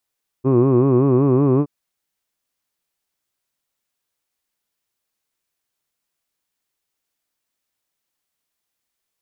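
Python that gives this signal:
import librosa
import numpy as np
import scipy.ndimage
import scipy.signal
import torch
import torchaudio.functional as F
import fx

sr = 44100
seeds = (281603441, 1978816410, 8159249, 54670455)

y = fx.formant_vowel(sr, seeds[0], length_s=1.22, hz=126.0, glide_st=1.5, vibrato_hz=5.3, vibrato_st=1.25, f1_hz=350.0, f2_hz=1100.0, f3_hz=2500.0)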